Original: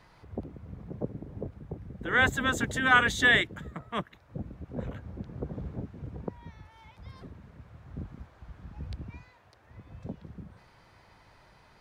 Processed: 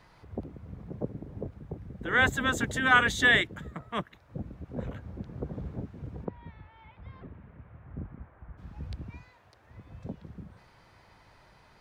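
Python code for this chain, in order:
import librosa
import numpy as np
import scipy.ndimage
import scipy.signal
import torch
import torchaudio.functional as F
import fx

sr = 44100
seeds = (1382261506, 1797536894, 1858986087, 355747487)

y = fx.lowpass(x, sr, hz=fx.line((6.24, 3600.0), (8.57, 2000.0)), slope=24, at=(6.24, 8.57), fade=0.02)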